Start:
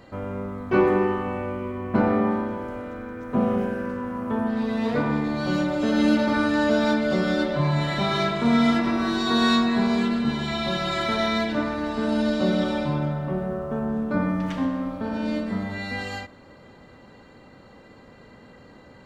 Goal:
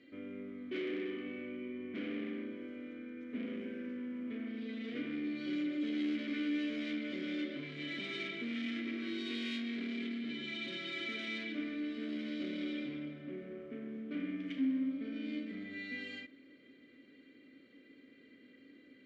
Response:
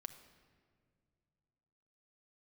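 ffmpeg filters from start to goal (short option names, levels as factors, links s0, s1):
-filter_complex "[0:a]asoftclip=type=tanh:threshold=0.0708,acontrast=24,volume=10,asoftclip=hard,volume=0.1,asplit=3[s0][s1][s2];[s0]bandpass=f=270:t=q:w=8,volume=1[s3];[s1]bandpass=f=2290:t=q:w=8,volume=0.501[s4];[s2]bandpass=f=3010:t=q:w=8,volume=0.355[s5];[s3][s4][s5]amix=inputs=3:normalize=0,lowshelf=f=300:t=q:w=1.5:g=-7,volume=0.891"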